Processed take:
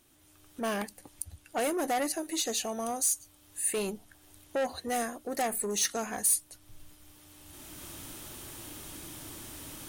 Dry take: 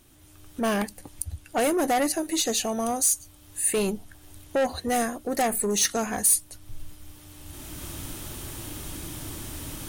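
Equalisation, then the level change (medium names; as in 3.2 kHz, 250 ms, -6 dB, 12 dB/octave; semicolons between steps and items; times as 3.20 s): bass shelf 160 Hz -9.5 dB; -5.5 dB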